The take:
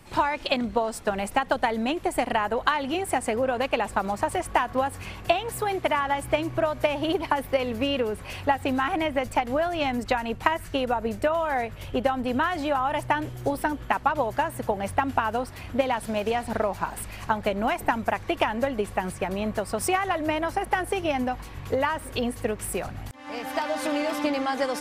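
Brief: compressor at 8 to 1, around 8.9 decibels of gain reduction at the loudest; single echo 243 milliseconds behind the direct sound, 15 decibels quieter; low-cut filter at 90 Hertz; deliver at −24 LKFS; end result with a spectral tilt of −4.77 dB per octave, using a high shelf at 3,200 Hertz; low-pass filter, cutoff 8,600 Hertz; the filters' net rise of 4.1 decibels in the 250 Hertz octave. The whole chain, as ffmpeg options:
ffmpeg -i in.wav -af "highpass=90,lowpass=8600,equalizer=frequency=250:width_type=o:gain=5,highshelf=frequency=3200:gain=-9,acompressor=threshold=-26dB:ratio=8,aecho=1:1:243:0.178,volume=7.5dB" out.wav

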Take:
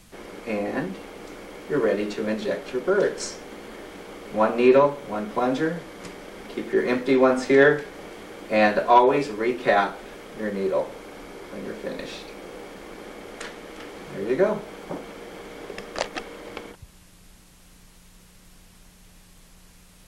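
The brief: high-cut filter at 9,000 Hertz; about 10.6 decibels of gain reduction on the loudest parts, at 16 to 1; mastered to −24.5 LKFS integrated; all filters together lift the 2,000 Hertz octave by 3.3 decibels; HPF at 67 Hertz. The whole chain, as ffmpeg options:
ffmpeg -i in.wav -af "highpass=67,lowpass=9000,equalizer=frequency=2000:width_type=o:gain=4,acompressor=threshold=-20dB:ratio=16,volume=5dB" out.wav

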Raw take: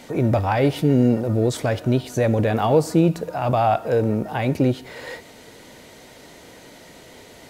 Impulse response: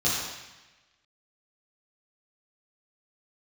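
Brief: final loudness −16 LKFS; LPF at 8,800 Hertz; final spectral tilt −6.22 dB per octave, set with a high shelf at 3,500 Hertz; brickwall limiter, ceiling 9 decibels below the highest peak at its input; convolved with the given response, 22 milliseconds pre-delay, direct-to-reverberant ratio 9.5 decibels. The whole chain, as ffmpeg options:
-filter_complex "[0:a]lowpass=8800,highshelf=frequency=3500:gain=5.5,alimiter=limit=-15dB:level=0:latency=1,asplit=2[link_01][link_02];[1:a]atrim=start_sample=2205,adelay=22[link_03];[link_02][link_03]afir=irnorm=-1:irlink=0,volume=-21.5dB[link_04];[link_01][link_04]amix=inputs=2:normalize=0,volume=8dB"

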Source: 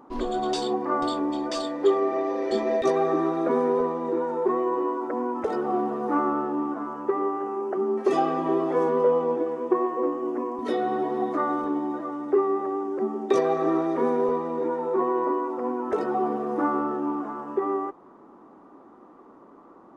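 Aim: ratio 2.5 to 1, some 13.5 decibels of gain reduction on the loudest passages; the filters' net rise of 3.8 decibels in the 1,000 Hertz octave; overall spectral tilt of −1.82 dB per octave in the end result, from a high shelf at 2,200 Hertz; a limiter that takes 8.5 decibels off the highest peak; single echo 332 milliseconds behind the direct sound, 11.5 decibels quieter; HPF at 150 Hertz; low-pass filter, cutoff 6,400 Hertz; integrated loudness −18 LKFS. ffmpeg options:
ffmpeg -i in.wav -af "highpass=150,lowpass=6400,equalizer=frequency=1000:width_type=o:gain=6.5,highshelf=frequency=2200:gain=-8.5,acompressor=threshold=-37dB:ratio=2.5,alimiter=level_in=5dB:limit=-24dB:level=0:latency=1,volume=-5dB,aecho=1:1:332:0.266,volume=19dB" out.wav

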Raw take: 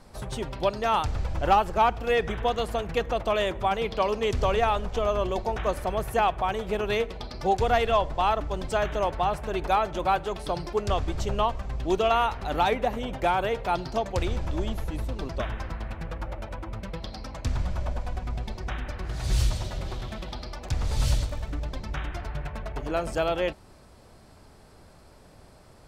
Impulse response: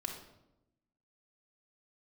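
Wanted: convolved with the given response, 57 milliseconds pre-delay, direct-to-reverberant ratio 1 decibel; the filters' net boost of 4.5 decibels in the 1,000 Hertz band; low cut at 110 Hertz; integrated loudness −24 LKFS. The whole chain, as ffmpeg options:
-filter_complex "[0:a]highpass=110,equalizer=frequency=1000:width_type=o:gain=6,asplit=2[link_01][link_02];[1:a]atrim=start_sample=2205,adelay=57[link_03];[link_02][link_03]afir=irnorm=-1:irlink=0,volume=-1.5dB[link_04];[link_01][link_04]amix=inputs=2:normalize=0,volume=-2dB"

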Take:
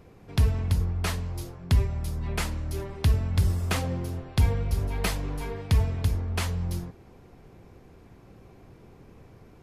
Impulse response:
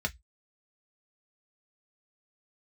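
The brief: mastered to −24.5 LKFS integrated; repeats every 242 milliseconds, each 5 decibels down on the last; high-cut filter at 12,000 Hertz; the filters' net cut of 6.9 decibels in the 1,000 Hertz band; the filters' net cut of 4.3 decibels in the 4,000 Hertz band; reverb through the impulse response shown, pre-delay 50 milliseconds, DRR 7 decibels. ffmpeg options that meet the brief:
-filter_complex "[0:a]lowpass=12000,equalizer=frequency=1000:width_type=o:gain=-9,equalizer=frequency=4000:width_type=o:gain=-5,aecho=1:1:242|484|726|968|1210|1452|1694:0.562|0.315|0.176|0.0988|0.0553|0.031|0.0173,asplit=2[link_01][link_02];[1:a]atrim=start_sample=2205,adelay=50[link_03];[link_02][link_03]afir=irnorm=-1:irlink=0,volume=-12.5dB[link_04];[link_01][link_04]amix=inputs=2:normalize=0,volume=-2dB"

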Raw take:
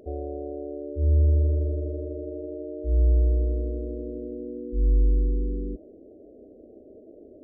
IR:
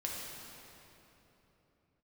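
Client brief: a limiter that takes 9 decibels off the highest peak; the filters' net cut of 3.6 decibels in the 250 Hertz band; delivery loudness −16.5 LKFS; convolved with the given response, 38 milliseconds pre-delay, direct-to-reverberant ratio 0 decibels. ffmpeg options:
-filter_complex "[0:a]equalizer=frequency=250:width_type=o:gain=-5,alimiter=limit=-22dB:level=0:latency=1,asplit=2[link_01][link_02];[1:a]atrim=start_sample=2205,adelay=38[link_03];[link_02][link_03]afir=irnorm=-1:irlink=0,volume=-2.5dB[link_04];[link_01][link_04]amix=inputs=2:normalize=0,volume=13dB"

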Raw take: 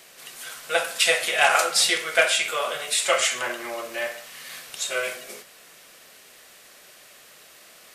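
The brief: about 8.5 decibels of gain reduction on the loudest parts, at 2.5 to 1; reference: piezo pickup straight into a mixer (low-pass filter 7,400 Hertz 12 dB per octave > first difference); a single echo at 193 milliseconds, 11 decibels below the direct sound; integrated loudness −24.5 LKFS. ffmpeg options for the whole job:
ffmpeg -i in.wav -af "acompressor=threshold=-27dB:ratio=2.5,lowpass=7400,aderivative,aecho=1:1:193:0.282,volume=11.5dB" out.wav

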